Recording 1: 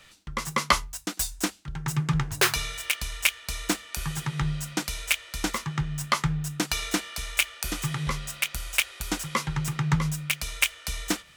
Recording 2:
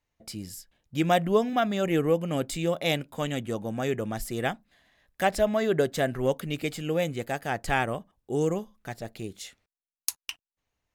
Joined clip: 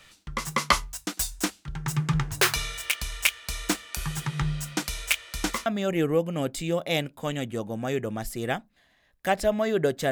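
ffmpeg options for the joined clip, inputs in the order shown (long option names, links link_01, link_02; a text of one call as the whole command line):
ffmpeg -i cue0.wav -i cue1.wav -filter_complex "[0:a]apad=whole_dur=10.11,atrim=end=10.11,atrim=end=5.662[link_01];[1:a]atrim=start=1.608:end=6.06[link_02];[link_01][link_02]acrossfade=duration=0.004:curve1=hsin:curve2=hsin" out.wav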